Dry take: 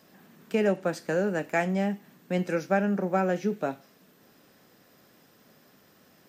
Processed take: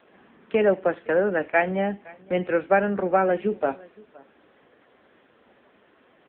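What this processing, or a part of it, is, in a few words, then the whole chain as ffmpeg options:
satellite phone: -af "highpass=300,lowpass=3400,aecho=1:1:517:0.0668,volume=7dB" -ar 8000 -c:a libopencore_amrnb -b:a 6700

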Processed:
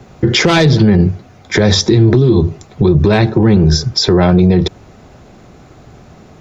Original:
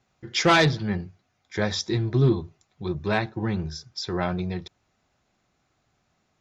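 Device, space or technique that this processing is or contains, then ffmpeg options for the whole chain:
mastering chain: -filter_complex "[0:a]equalizer=frequency=440:width_type=o:width=0.57:gain=4,acrossover=split=140|2500[link_01][link_02][link_03];[link_01]acompressor=threshold=-40dB:ratio=4[link_04];[link_02]acompressor=threshold=-30dB:ratio=4[link_05];[link_03]acompressor=threshold=-29dB:ratio=4[link_06];[link_04][link_05][link_06]amix=inputs=3:normalize=0,acompressor=threshold=-35dB:ratio=2,tiltshelf=frequency=840:gain=6,asoftclip=type=hard:threshold=-21dB,alimiter=level_in=29dB:limit=-1dB:release=50:level=0:latency=1,volume=-1dB"

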